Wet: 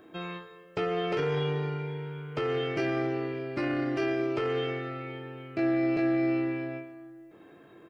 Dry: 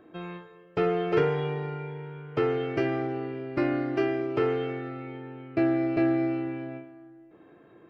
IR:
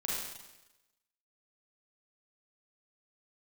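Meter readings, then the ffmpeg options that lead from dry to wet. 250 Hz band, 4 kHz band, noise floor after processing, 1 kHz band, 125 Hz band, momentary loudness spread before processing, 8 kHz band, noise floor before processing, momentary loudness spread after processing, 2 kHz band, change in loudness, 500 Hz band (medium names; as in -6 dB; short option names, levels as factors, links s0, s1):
-1.5 dB, +4.5 dB, -54 dBFS, -2.0 dB, -0.5 dB, 15 LU, no reading, -55 dBFS, 13 LU, +0.5 dB, -2.0 dB, -2.5 dB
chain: -filter_complex "[0:a]highshelf=f=3100:g=11.5,alimiter=limit=0.0794:level=0:latency=1:release=17,asplit=2[s0][s1];[s1]adelay=21,volume=0.355[s2];[s0][s2]amix=inputs=2:normalize=0"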